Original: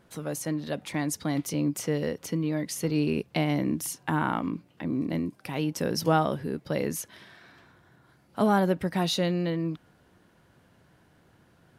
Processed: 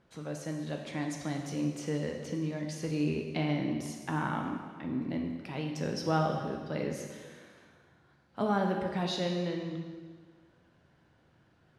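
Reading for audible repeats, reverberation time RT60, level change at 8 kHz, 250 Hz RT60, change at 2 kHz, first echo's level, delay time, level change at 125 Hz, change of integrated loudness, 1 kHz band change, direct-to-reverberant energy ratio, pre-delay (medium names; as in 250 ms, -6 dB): no echo, 1.6 s, -10.5 dB, 1.7 s, -5.0 dB, no echo, no echo, -4.5 dB, -5.5 dB, -5.0 dB, 2.0 dB, 7 ms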